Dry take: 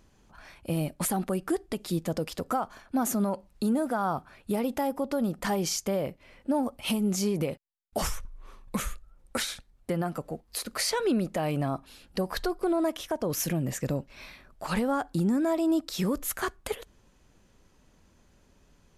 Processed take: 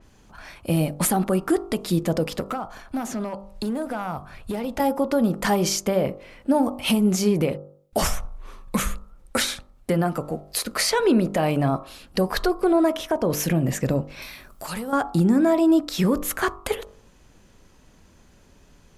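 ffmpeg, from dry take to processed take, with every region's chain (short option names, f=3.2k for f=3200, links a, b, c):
-filter_complex "[0:a]asettb=1/sr,asplit=3[a][b][c];[a]atrim=end=2.404[d];[b]atrim=start=2.4:end=4.8,asetpts=PTS-STARTPTS,afade=t=in:d=0.004:c=qsin,afade=t=out:st=2.396:d=0.004:c=qsin,asubboost=boost=6.5:cutoff=120,acrossover=split=240|6800[e][f][g];[e]acompressor=threshold=-43dB:ratio=4[h];[f]acompressor=threshold=-34dB:ratio=4[i];[g]acompressor=threshold=-59dB:ratio=4[j];[h][i][j]amix=inputs=3:normalize=0,volume=29dB,asoftclip=hard,volume=-29dB[k];[c]atrim=start=4.796[l];[d][k]acrossfade=d=0.004:c1=hsin:c2=qsin[m];[m][l]acrossfade=d=0.004:c1=qsin:c2=hsin,asettb=1/sr,asplit=3[n][o][p];[n]atrim=end=14.224[q];[o]atrim=start=14.22:end=14.93,asetpts=PTS-STARTPTS,afade=t=in:d=0.004:c=qsin,afade=t=out:st=0.706:d=0.004:c=qsin,aemphasis=mode=production:type=50kf,acompressor=threshold=-44dB:ratio=2:attack=3.2:release=140:knee=1:detection=peak[r];[p]atrim=start=14.926[s];[q][r]acrossfade=d=0.004:c1=hsin:c2=qsin[t];[t][s]acrossfade=d=0.004:c1=qsin:c2=hsin,bandreject=f=49.36:t=h:w=4,bandreject=f=98.72:t=h:w=4,bandreject=f=148.08:t=h:w=4,bandreject=f=197.44:t=h:w=4,bandreject=f=246.8:t=h:w=4,bandreject=f=296.16:t=h:w=4,bandreject=f=345.52:t=h:w=4,bandreject=f=394.88:t=h:w=4,bandreject=f=444.24:t=h:w=4,bandreject=f=493.6:t=h:w=4,bandreject=f=542.96:t=h:w=4,bandreject=f=592.32:t=h:w=4,bandreject=f=641.68:t=h:w=4,bandreject=f=691.04:t=h:w=4,bandreject=f=740.4:t=h:w=4,bandreject=f=789.76:t=h:w=4,bandreject=f=839.12:t=h:w=4,bandreject=f=888.48:t=h:w=4,bandreject=f=937.84:t=h:w=4,bandreject=f=987.2:t=h:w=4,bandreject=f=1.03656k:t=h:w=4,bandreject=f=1.08592k:t=h:w=4,bandreject=f=1.13528k:t=h:w=4,bandreject=f=1.18464k:t=h:w=4,bandreject=f=1.234k:t=h:w=4,bandreject=f=1.28336k:t=h:w=4,bandreject=f=1.33272k:t=h:w=4,bandreject=f=1.38208k:t=h:w=4,adynamicequalizer=threshold=0.00355:dfrequency=3700:dqfactor=0.7:tfrequency=3700:tqfactor=0.7:attack=5:release=100:ratio=0.375:range=3:mode=cutabove:tftype=highshelf,volume=8dB"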